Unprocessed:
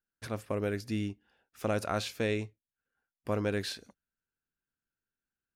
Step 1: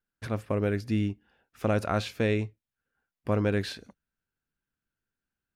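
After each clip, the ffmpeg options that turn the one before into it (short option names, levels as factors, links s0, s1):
-af "bass=f=250:g=4,treble=f=4000:g=-7,volume=1.5"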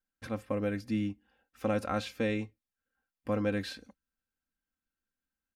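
-af "aecho=1:1:3.8:0.63,volume=0.531"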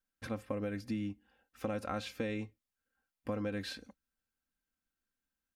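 -af "acompressor=threshold=0.0224:ratio=6"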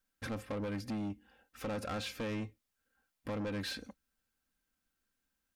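-af "asoftclip=type=tanh:threshold=0.0106,volume=1.88"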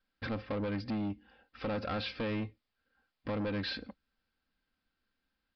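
-af "aresample=11025,aresample=44100,volume=1.41"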